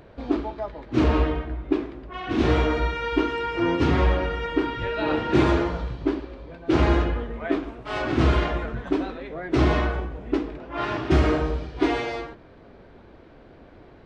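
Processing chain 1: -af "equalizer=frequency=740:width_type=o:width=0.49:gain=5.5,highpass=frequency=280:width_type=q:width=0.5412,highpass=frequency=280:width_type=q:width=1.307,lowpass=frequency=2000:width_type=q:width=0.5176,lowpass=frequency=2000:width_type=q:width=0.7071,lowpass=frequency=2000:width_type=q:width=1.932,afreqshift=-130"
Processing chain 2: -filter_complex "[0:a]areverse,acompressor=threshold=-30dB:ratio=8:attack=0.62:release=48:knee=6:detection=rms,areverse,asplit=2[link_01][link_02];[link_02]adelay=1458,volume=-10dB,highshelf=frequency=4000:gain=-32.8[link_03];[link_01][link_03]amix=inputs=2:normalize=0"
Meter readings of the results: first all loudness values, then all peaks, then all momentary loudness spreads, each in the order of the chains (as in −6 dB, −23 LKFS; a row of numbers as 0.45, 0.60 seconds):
−26.5, −36.0 LKFS; −9.0, −24.0 dBFS; 9, 8 LU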